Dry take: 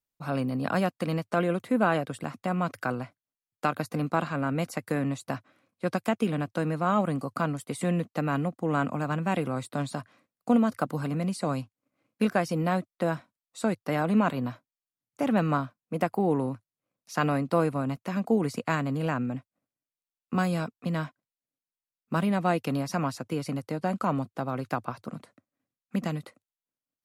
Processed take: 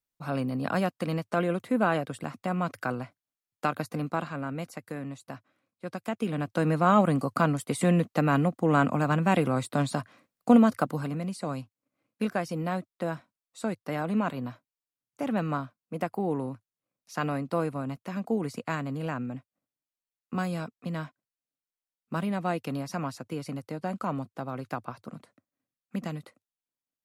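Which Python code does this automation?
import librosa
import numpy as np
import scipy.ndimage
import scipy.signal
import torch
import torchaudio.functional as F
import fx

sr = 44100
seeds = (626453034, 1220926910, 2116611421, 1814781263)

y = fx.gain(x, sr, db=fx.line((3.77, -1.0), (4.95, -8.5), (5.91, -8.5), (6.71, 4.0), (10.65, 4.0), (11.24, -4.0)))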